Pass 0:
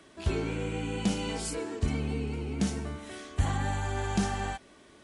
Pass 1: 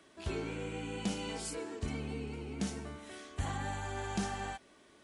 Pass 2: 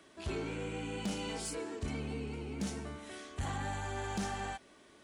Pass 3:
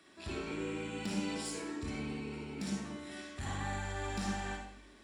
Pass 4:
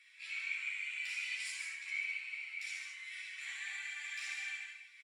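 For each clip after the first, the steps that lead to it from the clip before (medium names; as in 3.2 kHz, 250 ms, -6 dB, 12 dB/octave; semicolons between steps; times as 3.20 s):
bass shelf 170 Hz -6 dB; trim -5 dB
saturation -31 dBFS, distortion -16 dB; trim +1.5 dB
reverberation RT60 0.65 s, pre-delay 46 ms, DRR -0.5 dB; trim -3 dB
ladder high-pass 2.1 kHz, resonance 80%; on a send: delay 144 ms -5.5 dB; on the sum: three-phase chorus; trim +11 dB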